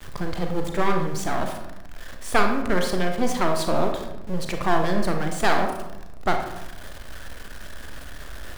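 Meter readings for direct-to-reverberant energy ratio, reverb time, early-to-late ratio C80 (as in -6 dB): 3.5 dB, 0.95 s, 8.0 dB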